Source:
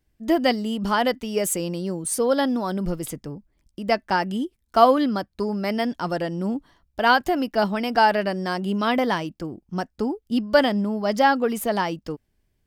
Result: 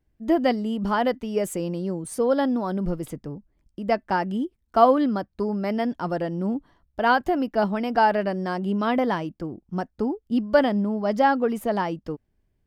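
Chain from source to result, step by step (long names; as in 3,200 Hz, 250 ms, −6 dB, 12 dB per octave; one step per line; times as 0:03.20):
high-shelf EQ 2,300 Hz −11.5 dB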